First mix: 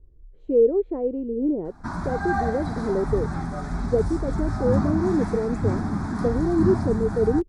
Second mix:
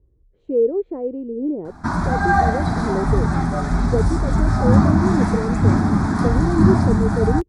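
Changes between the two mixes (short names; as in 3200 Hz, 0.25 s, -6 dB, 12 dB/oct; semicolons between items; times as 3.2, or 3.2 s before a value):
speech: add HPF 61 Hz; background +9.0 dB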